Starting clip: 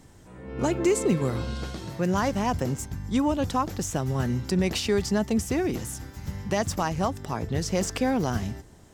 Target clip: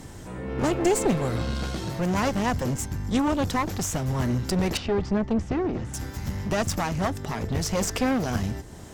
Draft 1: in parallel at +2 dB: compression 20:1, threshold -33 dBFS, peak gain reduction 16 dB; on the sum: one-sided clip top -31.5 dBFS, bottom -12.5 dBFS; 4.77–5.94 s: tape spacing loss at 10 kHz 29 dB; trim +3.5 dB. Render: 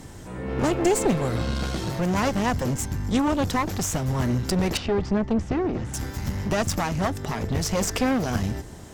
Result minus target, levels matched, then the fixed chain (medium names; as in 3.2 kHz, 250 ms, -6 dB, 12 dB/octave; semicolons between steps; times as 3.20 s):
compression: peak gain reduction -9.5 dB
in parallel at +2 dB: compression 20:1, threshold -43 dBFS, peak gain reduction 25.5 dB; on the sum: one-sided clip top -31.5 dBFS, bottom -12.5 dBFS; 4.77–5.94 s: tape spacing loss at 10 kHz 29 dB; trim +3.5 dB